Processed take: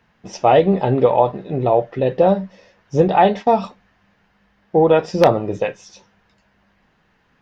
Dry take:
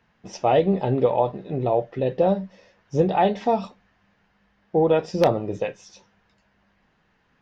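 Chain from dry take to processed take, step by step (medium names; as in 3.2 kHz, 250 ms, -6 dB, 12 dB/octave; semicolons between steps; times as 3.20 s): 3.08–3.54 s: gate -30 dBFS, range -16 dB; dynamic bell 1.3 kHz, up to +4 dB, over -35 dBFS, Q 0.78; trim +4.5 dB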